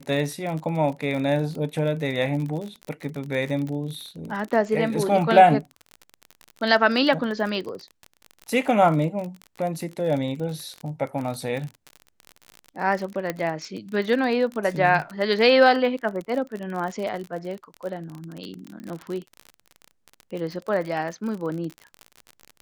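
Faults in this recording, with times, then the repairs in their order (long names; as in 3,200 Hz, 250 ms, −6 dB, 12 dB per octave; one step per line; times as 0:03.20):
surface crackle 41 per second −29 dBFS
0:13.30: click −12 dBFS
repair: click removal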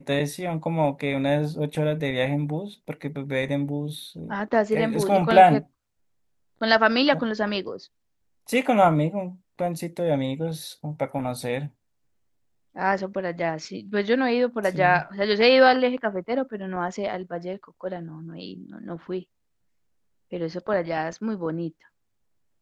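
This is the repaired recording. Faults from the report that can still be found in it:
none of them is left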